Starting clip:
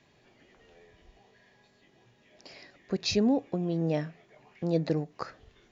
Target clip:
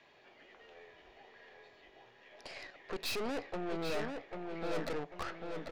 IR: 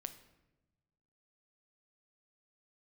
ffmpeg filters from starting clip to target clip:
-filter_complex "[0:a]acrossover=split=380 4400:gain=0.158 1 0.158[a][b][c];[a][b][c]amix=inputs=3:normalize=0,aeval=exprs='(tanh(158*val(0)+0.75)-tanh(0.75))/158':c=same,asplit=2[d][e];[e]adelay=793,lowpass=f=4k:p=1,volume=-4.5dB,asplit=2[f][g];[g]adelay=793,lowpass=f=4k:p=1,volume=0.38,asplit=2[h][i];[i]adelay=793,lowpass=f=4k:p=1,volume=0.38,asplit=2[j][k];[k]adelay=793,lowpass=f=4k:p=1,volume=0.38,asplit=2[l][m];[m]adelay=793,lowpass=f=4k:p=1,volume=0.38[n];[d][f][h][j][l][n]amix=inputs=6:normalize=0,volume=8.5dB"

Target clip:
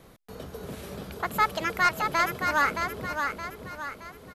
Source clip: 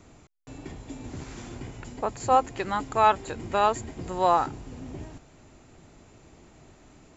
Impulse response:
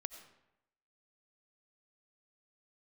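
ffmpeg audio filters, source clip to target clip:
-af "asoftclip=type=tanh:threshold=-13.5dB,asetrate=72765,aresample=44100,aecho=1:1:620|1240|1860|2480|3100:0.531|0.234|0.103|0.0452|0.0199"

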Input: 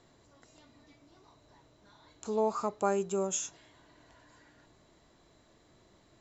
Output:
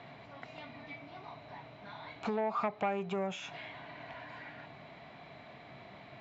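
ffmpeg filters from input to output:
-af "acompressor=threshold=-38dB:ratio=20,asoftclip=type=tanh:threshold=-37dB,highpass=130,equalizer=f=140:t=q:w=4:g=5,equalizer=f=340:t=q:w=4:g=-10,equalizer=f=490:t=q:w=4:g=-5,equalizer=f=720:t=q:w=4:g=8,equalizer=f=2.3k:t=q:w=4:g=10,lowpass=f=3.6k:w=0.5412,lowpass=f=3.6k:w=1.3066,volume=12dB"

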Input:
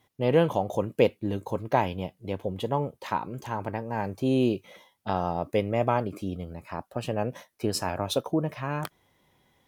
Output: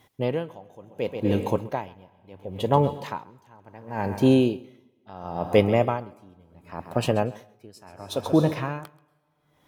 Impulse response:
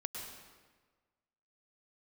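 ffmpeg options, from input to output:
-filter_complex "[0:a]asplit=2[a][b];[1:a]atrim=start_sample=2205,adelay=133[c];[b][c]afir=irnorm=-1:irlink=0,volume=-11.5dB[d];[a][d]amix=inputs=2:normalize=0,aeval=exprs='val(0)*pow(10,-28*(0.5-0.5*cos(2*PI*0.71*n/s))/20)':c=same,volume=8dB"

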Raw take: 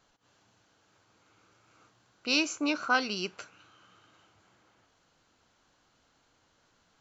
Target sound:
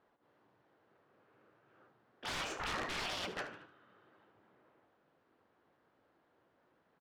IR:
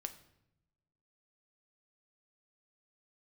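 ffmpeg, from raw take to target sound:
-filter_complex "[0:a]asplit=3[a][b][c];[b]asetrate=52444,aresample=44100,atempo=0.840896,volume=-2dB[d];[c]asetrate=55563,aresample=44100,atempo=0.793701,volume=-7dB[e];[a][d][e]amix=inputs=3:normalize=0,highpass=f=160:p=1,aemphasis=mode=reproduction:type=75fm,agate=range=-13dB:threshold=-56dB:ratio=16:detection=peak,equalizer=f=460:w=0.96:g=5,alimiter=limit=-15.5dB:level=0:latency=1:release=35,asoftclip=type=hard:threshold=-21.5dB,afftfilt=real='re*lt(hypot(re,im),0.0398)':imag='im*lt(hypot(re,im),0.0398)':win_size=1024:overlap=0.75,aeval=exprs='(mod(56.2*val(0)+1,2)-1)/56.2':c=same,adynamicsmooth=sensitivity=7:basefreq=3.2k,asplit=2[f][g];[g]aecho=0:1:75|150|225|300:0.224|0.0828|0.0306|0.0113[h];[f][h]amix=inputs=2:normalize=0,volume=6.5dB"

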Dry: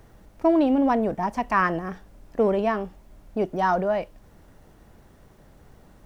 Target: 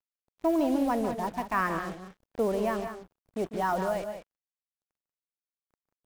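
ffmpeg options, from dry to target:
-filter_complex "[0:a]acrusher=bits=5:mix=0:aa=0.5,asplit=2[a][b];[b]aecho=0:1:148.7|186.6:0.282|0.316[c];[a][c]amix=inputs=2:normalize=0,volume=-6.5dB"

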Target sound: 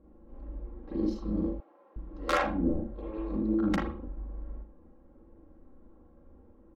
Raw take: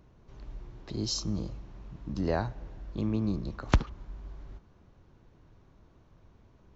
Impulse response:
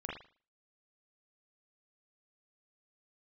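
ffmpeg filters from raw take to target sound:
-filter_complex "[0:a]equalizer=f=100:t=o:w=0.67:g=-9,equalizer=f=400:t=o:w=0.67:g=9,equalizer=f=2.5k:t=o:w=0.67:g=-3,aeval=exprs='(mod(5.31*val(0)+1,2)-1)/5.31':c=same[a];[1:a]atrim=start_sample=2205[b];[a][b]afir=irnorm=-1:irlink=0,adynamicsmooth=sensitivity=1.5:basefreq=1.2k,aecho=1:1:3.7:0.89,asettb=1/sr,asplit=3[c][d][e];[c]atrim=end=1.604[f];[d]atrim=start=1.6:end=4.08,asetpts=PTS-STARTPTS,afade=t=in:d=0.004:c=qsin,afade=t=out:st=2.476:d=0.004:c=qsin,acrossover=split=420[g][h];[g]adelay=360[i];[i][h]amix=inputs=2:normalize=0,atrim=end_sample=109368[j];[e]atrim=start=4.076[k];[f][j]acrossfade=d=0.004:c1=hsin:c2=qsin[l];[l][k]acrossfade=d=0.004:c1=qsin:c2=hsin"

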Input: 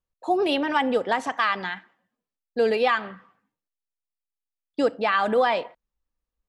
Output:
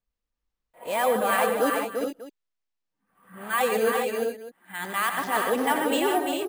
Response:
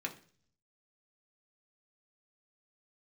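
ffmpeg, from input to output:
-af "areverse,acrusher=samples=4:mix=1:aa=0.000001,aecho=1:1:91|147|345|407|429|595:0.316|0.355|0.531|0.422|0.266|0.141,volume=-3dB"

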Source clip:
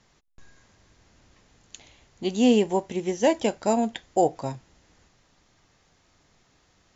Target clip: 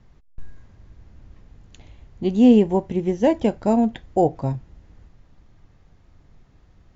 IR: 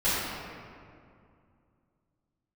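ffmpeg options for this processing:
-af "aemphasis=mode=reproduction:type=riaa"

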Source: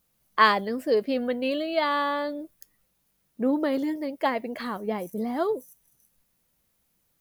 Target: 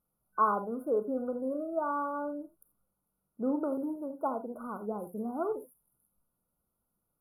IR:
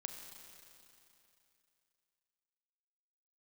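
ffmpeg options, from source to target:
-filter_complex "[1:a]atrim=start_sample=2205,atrim=end_sample=3969,asetrate=43218,aresample=44100[a];[0:a][a]afir=irnorm=-1:irlink=0,afftfilt=real='re*(1-between(b*sr/4096,1500,9400))':imag='im*(1-between(b*sr/4096,1500,9400))':win_size=4096:overlap=0.75,lowpass=12k,volume=-3dB"

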